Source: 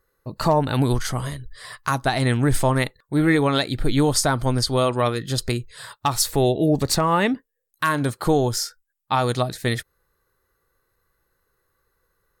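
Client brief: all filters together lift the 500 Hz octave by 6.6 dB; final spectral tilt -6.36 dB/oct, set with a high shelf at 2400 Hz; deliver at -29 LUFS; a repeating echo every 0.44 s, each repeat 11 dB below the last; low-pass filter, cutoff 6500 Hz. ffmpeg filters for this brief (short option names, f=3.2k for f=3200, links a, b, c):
-af "lowpass=6.5k,equalizer=f=500:t=o:g=8.5,highshelf=f=2.4k:g=-7.5,aecho=1:1:440|880|1320:0.282|0.0789|0.0221,volume=-10dB"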